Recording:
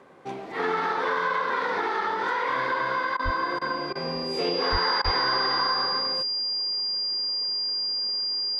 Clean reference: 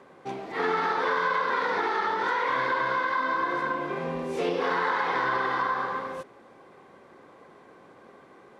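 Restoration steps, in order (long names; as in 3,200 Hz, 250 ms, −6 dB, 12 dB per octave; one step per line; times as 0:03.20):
notch filter 4,800 Hz, Q 30
0:03.24–0:03.36: high-pass filter 140 Hz 24 dB per octave
0:04.71–0:04.83: high-pass filter 140 Hz 24 dB per octave
0:05.04–0:05.16: high-pass filter 140 Hz 24 dB per octave
repair the gap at 0:03.17/0:03.59/0:03.93/0:05.02, 22 ms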